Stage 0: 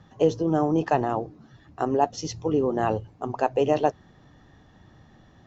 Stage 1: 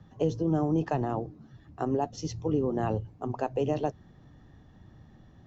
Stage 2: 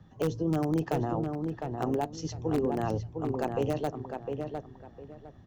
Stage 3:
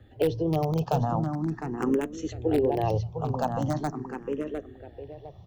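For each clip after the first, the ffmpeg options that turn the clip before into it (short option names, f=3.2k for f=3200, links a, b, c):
-filter_complex "[0:a]lowshelf=f=350:g=9,acrossover=split=220|3000[a][b][c];[b]acompressor=threshold=-19dB:ratio=3[d];[a][d][c]amix=inputs=3:normalize=0,volume=-7dB"
-filter_complex "[0:a]asplit=2[a][b];[b]aeval=exprs='(mod(7.94*val(0)+1,2)-1)/7.94':c=same,volume=-11dB[c];[a][c]amix=inputs=2:normalize=0,asplit=2[d][e];[e]adelay=706,lowpass=f=2.3k:p=1,volume=-5dB,asplit=2[f][g];[g]adelay=706,lowpass=f=2.3k:p=1,volume=0.25,asplit=2[h][i];[i]adelay=706,lowpass=f=2.3k:p=1,volume=0.25[j];[d][f][h][j]amix=inputs=4:normalize=0,volume=-3.5dB"
-filter_complex "[0:a]asplit=2[a][b];[b]afreqshift=0.42[c];[a][c]amix=inputs=2:normalize=1,volume=6.5dB"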